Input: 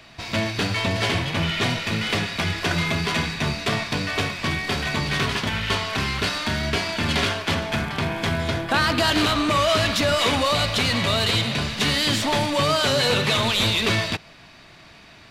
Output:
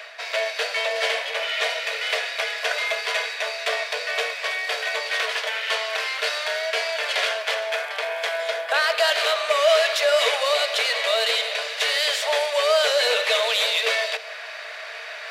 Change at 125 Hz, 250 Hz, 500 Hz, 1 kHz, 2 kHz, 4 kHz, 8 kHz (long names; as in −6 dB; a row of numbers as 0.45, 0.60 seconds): below −40 dB, below −35 dB, +3.0 dB, −2.5 dB, +1.5 dB, 0.0 dB, −1.0 dB